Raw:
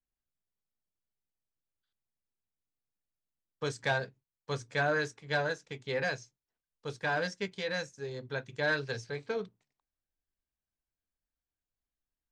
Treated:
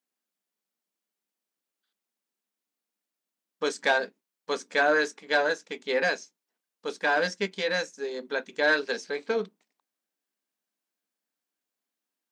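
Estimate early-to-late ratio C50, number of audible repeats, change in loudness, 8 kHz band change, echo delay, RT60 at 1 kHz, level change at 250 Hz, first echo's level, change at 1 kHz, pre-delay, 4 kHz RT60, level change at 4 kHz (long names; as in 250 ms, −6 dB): no reverb audible, no echo audible, +7.0 dB, +7.0 dB, no echo audible, no reverb audible, +5.0 dB, no echo audible, +7.0 dB, no reverb audible, no reverb audible, +7.0 dB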